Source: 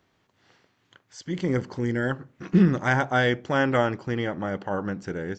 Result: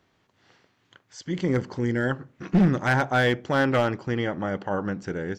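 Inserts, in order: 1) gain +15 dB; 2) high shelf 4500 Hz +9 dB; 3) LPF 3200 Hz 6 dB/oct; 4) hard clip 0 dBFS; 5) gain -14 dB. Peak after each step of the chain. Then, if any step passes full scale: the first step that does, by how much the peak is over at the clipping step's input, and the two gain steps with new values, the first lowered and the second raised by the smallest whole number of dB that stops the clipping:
+7.5, +8.0, +7.5, 0.0, -14.0 dBFS; step 1, 7.5 dB; step 1 +7 dB, step 5 -6 dB

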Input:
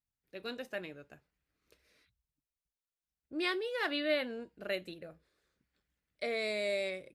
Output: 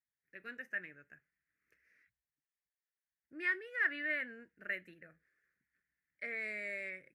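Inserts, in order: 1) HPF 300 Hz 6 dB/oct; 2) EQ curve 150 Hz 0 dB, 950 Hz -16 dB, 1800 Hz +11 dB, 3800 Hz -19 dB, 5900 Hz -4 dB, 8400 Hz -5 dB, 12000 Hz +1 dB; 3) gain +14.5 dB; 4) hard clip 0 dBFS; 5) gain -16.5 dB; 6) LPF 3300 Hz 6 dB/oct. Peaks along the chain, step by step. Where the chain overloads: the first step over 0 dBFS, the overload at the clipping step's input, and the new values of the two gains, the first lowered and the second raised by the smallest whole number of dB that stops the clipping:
-19.0, -17.5, -3.0, -3.0, -19.5, -20.5 dBFS; no overload

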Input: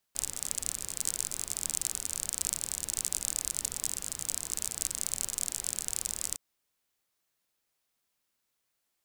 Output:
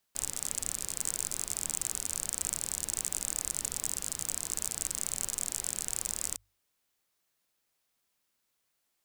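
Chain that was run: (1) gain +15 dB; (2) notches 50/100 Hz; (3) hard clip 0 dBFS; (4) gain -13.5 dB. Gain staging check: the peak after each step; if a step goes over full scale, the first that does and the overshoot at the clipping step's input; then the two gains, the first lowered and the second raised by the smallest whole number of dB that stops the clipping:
+8.5, +8.5, 0.0, -13.5 dBFS; step 1, 8.5 dB; step 1 +6 dB, step 4 -4.5 dB

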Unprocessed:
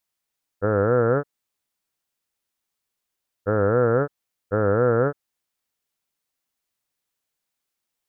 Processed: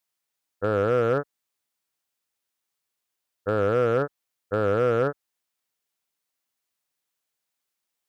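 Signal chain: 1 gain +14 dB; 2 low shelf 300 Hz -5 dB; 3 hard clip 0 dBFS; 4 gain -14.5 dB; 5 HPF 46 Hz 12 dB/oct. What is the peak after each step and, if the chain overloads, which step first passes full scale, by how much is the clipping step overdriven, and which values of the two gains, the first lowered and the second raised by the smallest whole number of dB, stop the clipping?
+5.0, +4.0, 0.0, -14.5, -13.0 dBFS; step 1, 4.0 dB; step 1 +10 dB, step 4 -10.5 dB

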